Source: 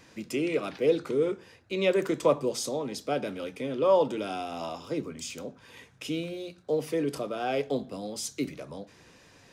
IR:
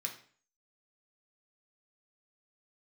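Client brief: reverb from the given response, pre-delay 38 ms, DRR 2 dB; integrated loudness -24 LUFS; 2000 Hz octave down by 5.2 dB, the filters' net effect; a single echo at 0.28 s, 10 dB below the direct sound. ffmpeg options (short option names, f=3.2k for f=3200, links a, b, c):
-filter_complex "[0:a]equalizer=f=2k:t=o:g=-7,aecho=1:1:280:0.316,asplit=2[a][b];[1:a]atrim=start_sample=2205,adelay=38[c];[b][c]afir=irnorm=-1:irlink=0,volume=-2dB[d];[a][d]amix=inputs=2:normalize=0,volume=5dB"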